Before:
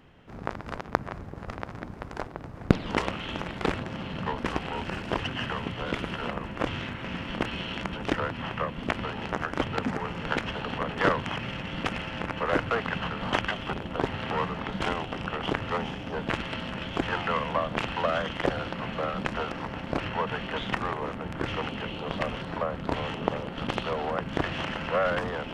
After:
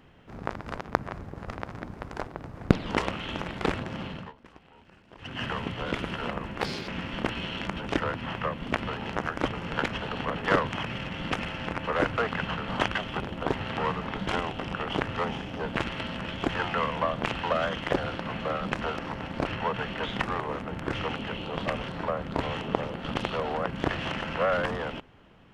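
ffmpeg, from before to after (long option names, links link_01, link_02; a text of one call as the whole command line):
ffmpeg -i in.wav -filter_complex "[0:a]asplit=6[link_01][link_02][link_03][link_04][link_05][link_06];[link_01]atrim=end=4.33,asetpts=PTS-STARTPTS,afade=type=out:start_time=4.05:duration=0.28:silence=0.0749894[link_07];[link_02]atrim=start=4.33:end=5.17,asetpts=PTS-STARTPTS,volume=-22.5dB[link_08];[link_03]atrim=start=5.17:end=6.614,asetpts=PTS-STARTPTS,afade=type=in:duration=0.28:silence=0.0749894[link_09];[link_04]atrim=start=6.61:end=7.04,asetpts=PTS-STARTPTS,asetrate=70560,aresample=44100[link_10];[link_05]atrim=start=7.036:end=9.692[link_11];[link_06]atrim=start=10.058[link_12];[link_07][link_08][link_09]concat=n=3:v=0:a=1[link_13];[link_13][link_10]acrossfade=duration=0.004:curve1=hsin:curve2=hsin[link_14];[link_14][link_11]acrossfade=duration=0.004:curve1=hsin:curve2=hsin[link_15];[link_15][link_12]acrossfade=duration=0.004:curve1=hsin:curve2=hsin" out.wav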